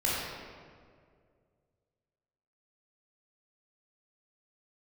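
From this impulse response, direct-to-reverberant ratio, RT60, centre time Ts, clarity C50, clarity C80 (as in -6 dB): -7.5 dB, 2.1 s, 122 ms, -3.0 dB, -0.5 dB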